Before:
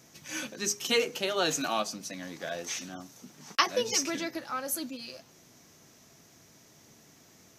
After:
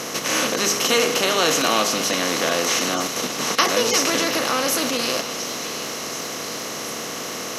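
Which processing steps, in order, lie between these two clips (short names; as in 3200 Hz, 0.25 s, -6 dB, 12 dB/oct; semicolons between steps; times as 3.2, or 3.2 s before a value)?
per-bin compression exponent 0.4; in parallel at -2 dB: level quantiser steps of 16 dB; on the sum: delay with a stepping band-pass 0.721 s, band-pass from 3200 Hz, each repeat 0.7 oct, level -9 dB; warbling echo 0.369 s, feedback 65%, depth 179 cents, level -19.5 dB; gain +2 dB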